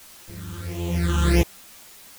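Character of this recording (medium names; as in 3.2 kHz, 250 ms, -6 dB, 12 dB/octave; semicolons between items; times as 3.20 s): a buzz of ramps at a fixed pitch in blocks of 256 samples; phasing stages 8, 1.5 Hz, lowest notch 630–1600 Hz; a quantiser's noise floor 8-bit, dither triangular; a shimmering, thickened sound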